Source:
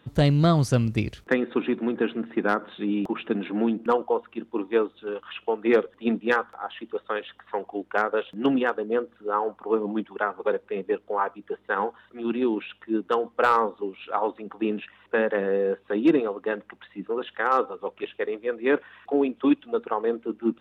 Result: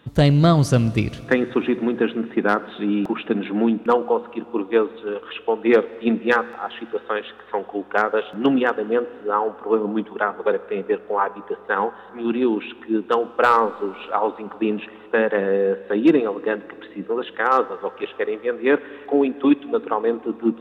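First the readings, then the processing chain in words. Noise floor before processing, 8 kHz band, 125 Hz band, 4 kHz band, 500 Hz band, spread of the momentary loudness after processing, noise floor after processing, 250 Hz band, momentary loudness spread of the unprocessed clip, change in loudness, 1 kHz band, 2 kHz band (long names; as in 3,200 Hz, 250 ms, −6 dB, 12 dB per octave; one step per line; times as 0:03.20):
−61 dBFS, can't be measured, +4.5 dB, +4.5 dB, +4.5 dB, 10 LU, −43 dBFS, +4.5 dB, 10 LU, +4.5 dB, +4.5 dB, +4.5 dB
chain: four-comb reverb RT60 3.6 s, combs from 31 ms, DRR 17.5 dB
level +4.5 dB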